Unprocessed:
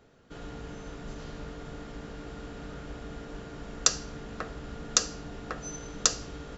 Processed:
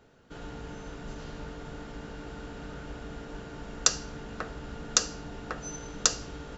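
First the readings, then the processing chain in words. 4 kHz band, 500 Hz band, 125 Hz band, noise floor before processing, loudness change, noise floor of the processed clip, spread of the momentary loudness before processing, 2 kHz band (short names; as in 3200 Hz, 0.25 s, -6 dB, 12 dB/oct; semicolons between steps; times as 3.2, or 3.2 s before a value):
0.0 dB, 0.0 dB, 0.0 dB, -45 dBFS, 0.0 dB, -44 dBFS, 16 LU, +1.5 dB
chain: small resonant body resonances 890/1500/2800 Hz, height 8 dB, ringing for 90 ms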